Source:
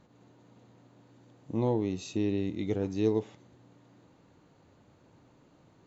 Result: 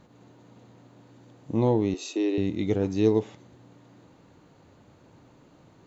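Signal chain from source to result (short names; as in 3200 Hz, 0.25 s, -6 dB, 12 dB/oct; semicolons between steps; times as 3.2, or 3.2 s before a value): 1.94–2.38 steep high-pass 280 Hz 48 dB/oct; gain +5.5 dB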